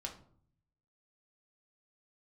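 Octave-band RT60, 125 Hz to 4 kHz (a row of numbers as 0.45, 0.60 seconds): 1.1, 0.85, 0.60, 0.55, 0.35, 0.30 seconds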